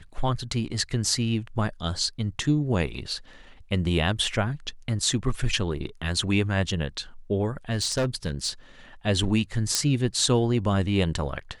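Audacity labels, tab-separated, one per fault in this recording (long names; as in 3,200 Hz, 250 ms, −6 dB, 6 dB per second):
7.700000	8.500000	clipping −20.5 dBFS
9.750000	9.750000	click −6 dBFS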